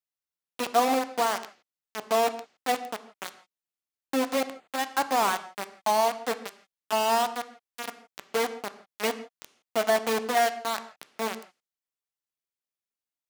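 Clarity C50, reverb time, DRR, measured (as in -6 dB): 14.0 dB, not exponential, 10.5 dB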